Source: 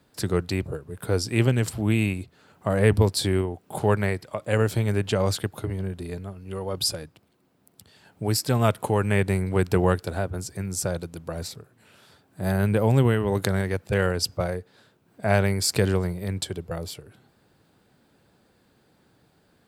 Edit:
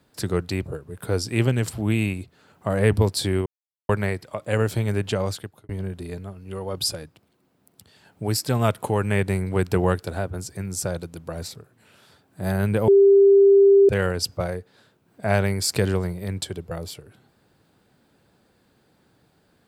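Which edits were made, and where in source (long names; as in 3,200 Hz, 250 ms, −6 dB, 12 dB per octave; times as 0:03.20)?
0:03.46–0:03.89: silence
0:05.10–0:05.69: fade out
0:12.88–0:13.89: beep over 396 Hz −10 dBFS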